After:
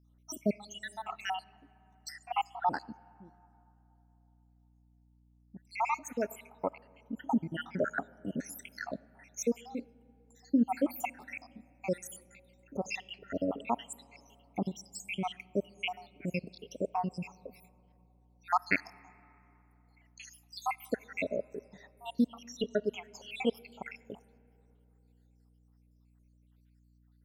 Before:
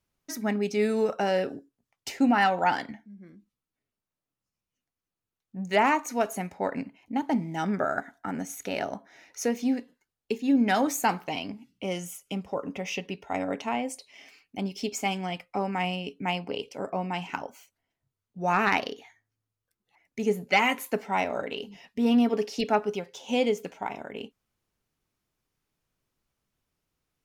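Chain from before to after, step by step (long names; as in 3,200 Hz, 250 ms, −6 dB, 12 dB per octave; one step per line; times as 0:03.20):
time-frequency cells dropped at random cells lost 80%
speech leveller within 4 dB 2 s
on a send at −23.5 dB: convolution reverb RT60 3.4 s, pre-delay 10 ms
on the sum: mains hum 60 Hz, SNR 27 dB
level −1.5 dB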